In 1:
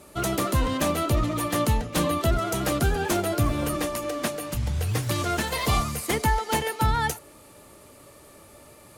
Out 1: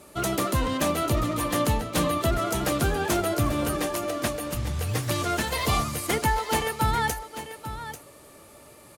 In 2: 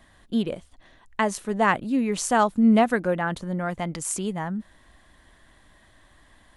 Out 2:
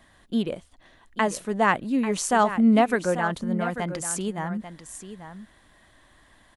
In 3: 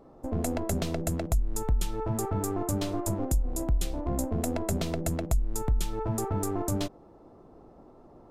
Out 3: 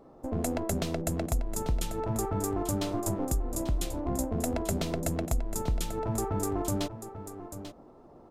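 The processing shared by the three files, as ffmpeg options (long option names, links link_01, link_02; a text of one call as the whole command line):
ffmpeg -i in.wav -filter_complex "[0:a]lowshelf=frequency=100:gain=-4.5,asplit=2[link_01][link_02];[link_02]aecho=0:1:841:0.266[link_03];[link_01][link_03]amix=inputs=2:normalize=0" out.wav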